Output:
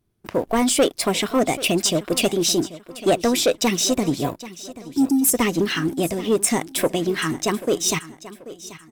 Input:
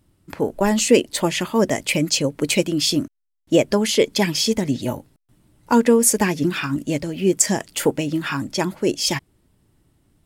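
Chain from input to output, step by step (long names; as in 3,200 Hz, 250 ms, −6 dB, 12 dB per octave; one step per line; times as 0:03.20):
change of speed 1.15×
healed spectral selection 0:04.57–0:05.31, 390–4,700 Hz before
leveller curve on the samples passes 2
on a send: repeating echo 785 ms, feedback 36%, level −16.5 dB
on the sum: level −6.5 dB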